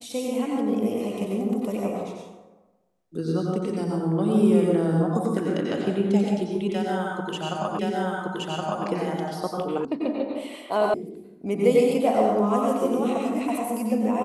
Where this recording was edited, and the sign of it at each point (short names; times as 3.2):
7.79 repeat of the last 1.07 s
9.85 sound cut off
10.94 sound cut off